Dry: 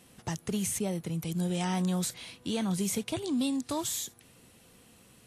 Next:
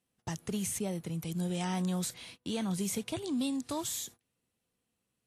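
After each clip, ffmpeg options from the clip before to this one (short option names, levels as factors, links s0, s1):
-af "agate=range=0.0794:threshold=0.00447:ratio=16:detection=peak,volume=0.708"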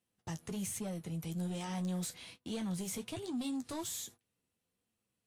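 -af "asoftclip=type=tanh:threshold=0.0316,flanger=delay=8.5:depth=4.2:regen=-40:speed=1.2:shape=triangular,volume=1.12"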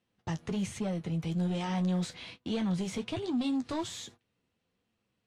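-af "lowpass=4200,volume=2.24"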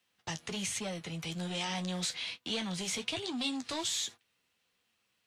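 -filter_complex "[0:a]tiltshelf=f=730:g=-9.5,acrossover=split=180|920|1900[s0][s1][s2][s3];[s2]acompressor=threshold=0.002:ratio=6[s4];[s0][s1][s4][s3]amix=inputs=4:normalize=0"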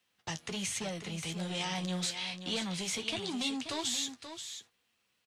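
-af "aecho=1:1:532:0.335"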